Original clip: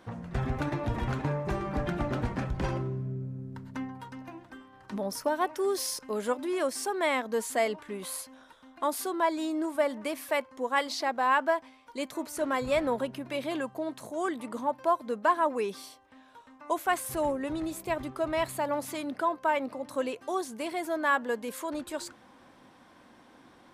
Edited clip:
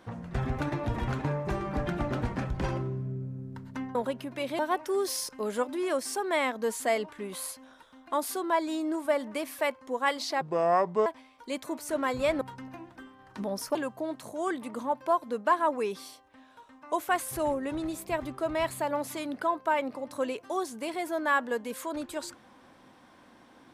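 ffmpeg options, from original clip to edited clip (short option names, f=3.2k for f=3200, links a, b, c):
-filter_complex "[0:a]asplit=7[a][b][c][d][e][f][g];[a]atrim=end=3.952[h];[b]atrim=start=12.888:end=13.532[i];[c]atrim=start=5.288:end=11.114[j];[d]atrim=start=11.11:end=11.54,asetpts=PTS-STARTPTS,asetrate=29106,aresample=44100[k];[e]atrim=start=11.536:end=12.892[l];[f]atrim=start=3.948:end=5.292[m];[g]atrim=start=13.528[n];[h][i]acrossfade=d=0.004:c1=hsin:c2=hsin[o];[o][j]acrossfade=d=0.004:c1=hsin:c2=hsin[p];[p][k]acrossfade=d=0.004:c1=hsin:c2=hsin[q];[q][l]acrossfade=d=0.004:c1=hsin:c2=hsin[r];[r][m]acrossfade=d=0.004:c1=hsin:c2=hsin[s];[s][n]acrossfade=d=0.004:c1=hsin:c2=hsin"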